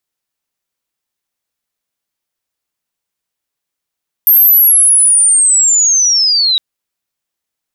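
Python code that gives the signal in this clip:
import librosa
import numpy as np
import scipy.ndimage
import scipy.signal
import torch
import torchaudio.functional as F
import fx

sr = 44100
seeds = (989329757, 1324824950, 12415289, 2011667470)

y = fx.chirp(sr, length_s=2.31, from_hz=13000.0, to_hz=3800.0, law='linear', from_db=-3.5, to_db=-8.5)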